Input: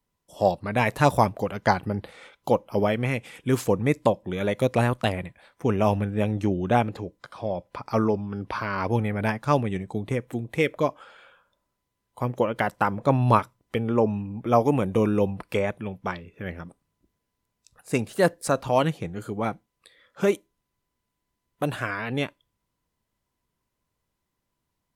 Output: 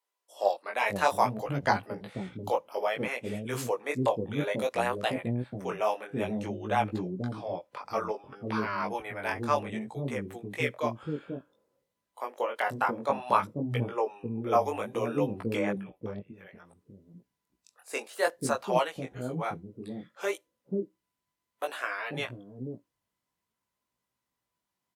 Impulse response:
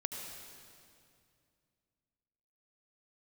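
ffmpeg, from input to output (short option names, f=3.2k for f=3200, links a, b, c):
-filter_complex "[0:a]highpass=f=130:p=1,lowshelf=f=210:g=-5.5,asettb=1/sr,asplit=3[a][b][c];[a]atrim=end=15.824[d];[b]atrim=start=15.82:end=16.65,asetpts=PTS-STARTPTS,afade=t=in:d=0.004:c=qsin,afade=t=out:st=0.826:d=0.004:c=qsin,acompressor=threshold=-42dB:ratio=8[e];[c]atrim=start=16.646[f];[d][e]acrossfade=d=0.004:c1=hsin:c2=qsin[g];[g][f]acrossfade=d=0.004:c1=qsin:c2=hsin,flanger=delay=15.5:depth=7.8:speed=0.59,acrossover=split=400[h][i];[h]adelay=490[j];[j][i]amix=inputs=2:normalize=0"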